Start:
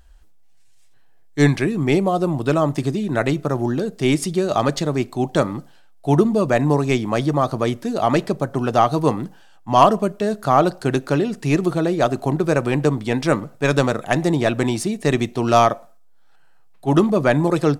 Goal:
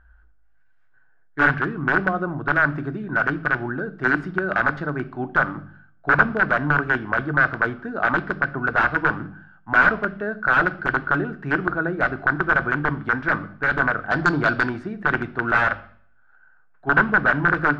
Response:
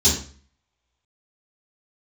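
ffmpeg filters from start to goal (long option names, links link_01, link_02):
-filter_complex "[0:a]aeval=exprs='(mod(2.82*val(0)+1,2)-1)/2.82':channel_layout=same,lowpass=frequency=1500:width_type=q:width=13,asettb=1/sr,asplit=3[link_01][link_02][link_03];[link_01]atrim=end=14.084[link_04];[link_02]atrim=start=14.08:end=14.66,asetpts=PTS-STARTPTS,afade=type=in:duration=0.004:curve=qsin,afade=type=out:start_time=0.576:duration=0.004:curve=qsin,aeval=exprs='1.19*(cos(1*acos(clip(val(0)/1.19,-1,1)))-cos(1*PI/2))+0.0944*(cos(5*acos(clip(val(0)/1.19,-1,1)))-cos(5*PI/2))':channel_layout=same[link_05];[link_03]atrim=start=14.656[link_06];[link_04][link_05]acrossfade=duration=0.004:curve1=hsin:curve2=qsin[link_07];[link_07][link_06]acrossfade=duration=0.004:curve1=qsin:curve2=hsin,asplit=2[link_08][link_09];[1:a]atrim=start_sample=2205,asetrate=32634,aresample=44100[link_10];[link_09][link_10]afir=irnorm=-1:irlink=0,volume=-31dB[link_11];[link_08][link_11]amix=inputs=2:normalize=0,volume=-7.5dB"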